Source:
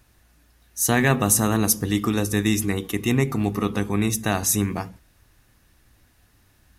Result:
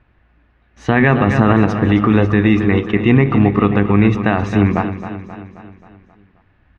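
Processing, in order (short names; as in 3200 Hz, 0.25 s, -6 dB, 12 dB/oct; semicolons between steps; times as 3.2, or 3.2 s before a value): G.711 law mismatch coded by A; LPF 2600 Hz 24 dB/oct; on a send: feedback echo 0.266 s, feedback 54%, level -12 dB; on the sum: maximiser +13 dB; gain -1 dB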